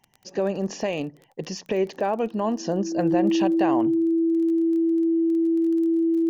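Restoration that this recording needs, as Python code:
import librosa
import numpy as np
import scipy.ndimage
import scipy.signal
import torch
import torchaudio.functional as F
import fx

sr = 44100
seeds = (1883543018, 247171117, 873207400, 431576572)

y = fx.fix_declick_ar(x, sr, threshold=6.5)
y = fx.notch(y, sr, hz=330.0, q=30.0)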